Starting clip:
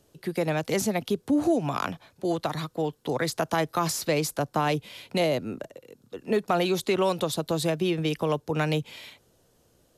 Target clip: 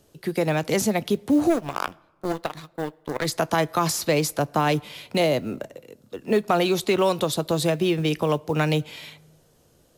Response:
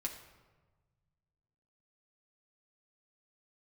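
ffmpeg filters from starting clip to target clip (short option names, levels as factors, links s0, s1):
-filter_complex "[0:a]acrusher=bits=8:mode=log:mix=0:aa=0.000001,asplit=3[s0][s1][s2];[s0]afade=t=out:st=1.49:d=0.02[s3];[s1]aeval=exprs='0.224*(cos(1*acos(clip(val(0)/0.224,-1,1)))-cos(1*PI/2))+0.0316*(cos(3*acos(clip(val(0)/0.224,-1,1)))-cos(3*PI/2))+0.0158*(cos(7*acos(clip(val(0)/0.224,-1,1)))-cos(7*PI/2))':c=same,afade=t=in:st=1.49:d=0.02,afade=t=out:st=3.24:d=0.02[s4];[s2]afade=t=in:st=3.24:d=0.02[s5];[s3][s4][s5]amix=inputs=3:normalize=0,asplit=2[s6][s7];[1:a]atrim=start_sample=2205,adelay=14[s8];[s7][s8]afir=irnorm=-1:irlink=0,volume=0.126[s9];[s6][s9]amix=inputs=2:normalize=0,volume=1.5"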